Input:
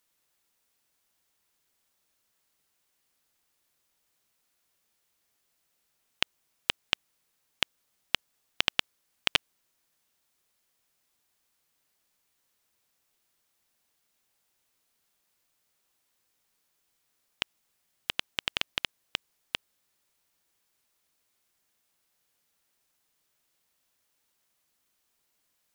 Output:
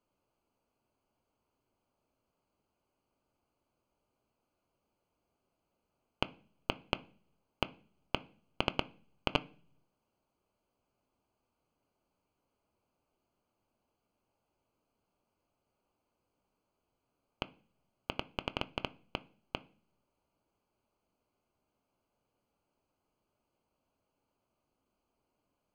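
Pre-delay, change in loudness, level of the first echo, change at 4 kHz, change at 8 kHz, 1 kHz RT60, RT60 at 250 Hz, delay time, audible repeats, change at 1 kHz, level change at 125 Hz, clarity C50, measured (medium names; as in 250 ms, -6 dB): 3 ms, -7.5 dB, no echo, -10.5 dB, -17.5 dB, 0.40 s, 0.75 s, no echo, no echo, +1.0 dB, +6.0 dB, 22.0 dB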